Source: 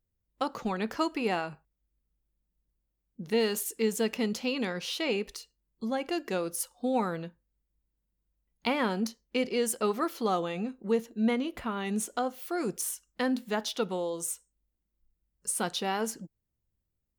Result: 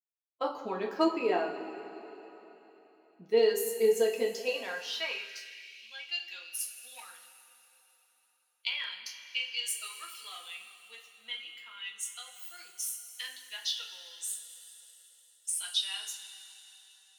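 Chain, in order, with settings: per-bin expansion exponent 1.5; notches 50/100/150 Hz; two-slope reverb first 0.3 s, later 3.7 s, from -17 dB, DRR -2 dB; added harmonics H 4 -31 dB, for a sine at -16 dBFS; high-pass sweep 380 Hz -> 2900 Hz, 4.11–5.98; gain -3 dB

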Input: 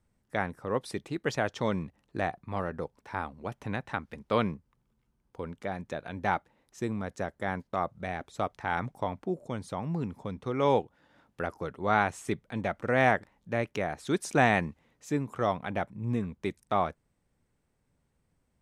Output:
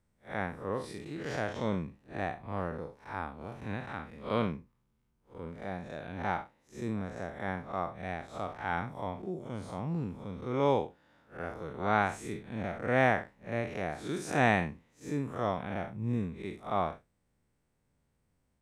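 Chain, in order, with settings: time blur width 0.125 s

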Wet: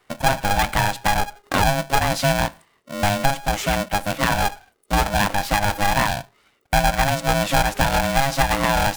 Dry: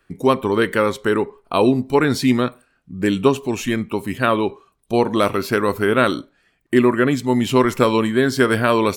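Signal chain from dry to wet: dynamic EQ 390 Hz, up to +4 dB, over -29 dBFS, Q 3.8; compressor 2.5:1, threshold -19 dBFS, peak gain reduction 8.5 dB; polarity switched at an audio rate 410 Hz; gain +1.5 dB

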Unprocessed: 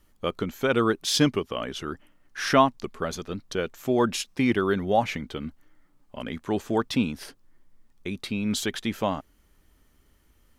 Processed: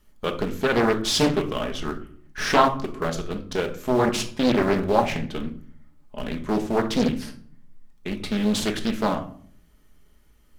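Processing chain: in parallel at -9.5 dB: Schmitt trigger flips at -27 dBFS; on the sum: shoebox room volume 620 m³, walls furnished, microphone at 1.4 m; Doppler distortion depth 0.72 ms

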